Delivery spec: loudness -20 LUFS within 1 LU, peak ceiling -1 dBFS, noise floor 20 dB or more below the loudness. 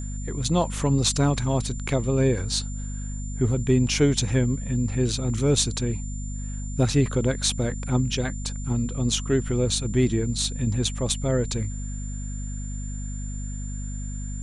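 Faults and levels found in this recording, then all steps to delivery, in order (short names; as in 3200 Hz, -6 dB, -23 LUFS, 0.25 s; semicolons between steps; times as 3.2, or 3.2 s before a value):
hum 50 Hz; harmonics up to 250 Hz; hum level -29 dBFS; steady tone 7200 Hz; tone level -41 dBFS; loudness -25.5 LUFS; peak -9.0 dBFS; loudness target -20.0 LUFS
-> notches 50/100/150/200/250 Hz; notch 7200 Hz, Q 30; gain +5.5 dB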